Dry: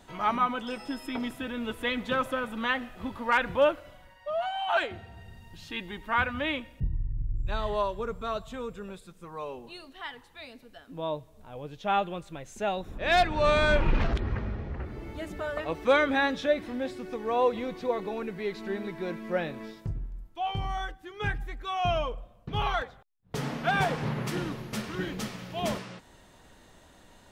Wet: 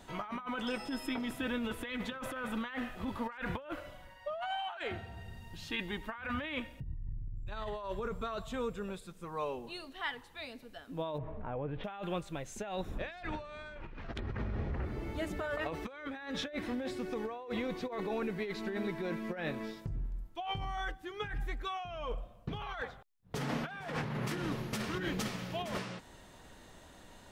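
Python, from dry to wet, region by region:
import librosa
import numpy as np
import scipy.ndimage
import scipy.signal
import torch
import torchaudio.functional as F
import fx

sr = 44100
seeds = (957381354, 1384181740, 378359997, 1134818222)

y = fx.chain(x, sr, fx.lowpass(hz=2100.0, slope=24),
    fx.env_flatten(amount_pct=70), at=(11.18, 11.84))
y = fx.dynamic_eq(y, sr, hz=1700.0, q=1.1, threshold_db=-40.0, ratio=4.0, max_db=4)
y = fx.over_compress(y, sr, threshold_db=-34.0, ratio=-1.0)
y = y * librosa.db_to_amplitude(-4.5)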